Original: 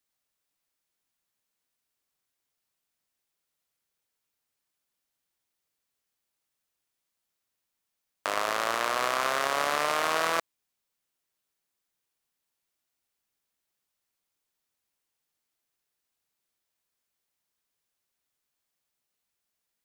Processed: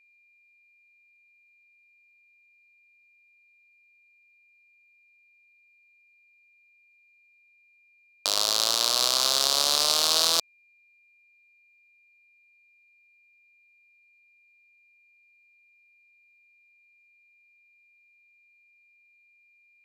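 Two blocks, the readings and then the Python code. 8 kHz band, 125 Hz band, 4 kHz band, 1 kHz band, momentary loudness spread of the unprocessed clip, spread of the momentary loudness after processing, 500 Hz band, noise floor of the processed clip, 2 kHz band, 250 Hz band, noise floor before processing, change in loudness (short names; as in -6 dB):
+13.0 dB, n/a, +14.0 dB, -5.0 dB, 5 LU, 5 LU, -3.0 dB, -63 dBFS, -6.5 dB, -2.5 dB, -84 dBFS, +6.0 dB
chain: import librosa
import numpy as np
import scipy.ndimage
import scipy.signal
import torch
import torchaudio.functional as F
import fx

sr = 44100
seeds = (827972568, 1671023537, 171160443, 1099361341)

y = fx.wiener(x, sr, points=15)
y = fx.high_shelf_res(y, sr, hz=2900.0, db=13.5, q=3.0)
y = y + 10.0 ** (-57.0 / 20.0) * np.sin(2.0 * np.pi * 2400.0 * np.arange(len(y)) / sr)
y = y * librosa.db_to_amplitude(-2.5)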